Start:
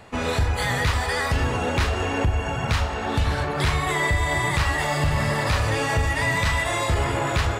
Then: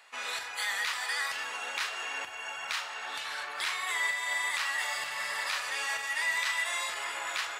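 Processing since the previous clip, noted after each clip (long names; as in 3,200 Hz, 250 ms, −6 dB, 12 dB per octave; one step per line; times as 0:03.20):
high-pass filter 1,400 Hz 12 dB per octave
level −4 dB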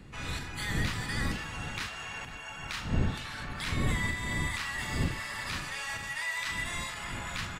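wind on the microphone 160 Hz −32 dBFS
slap from a distant wall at 87 metres, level −14 dB
level −4 dB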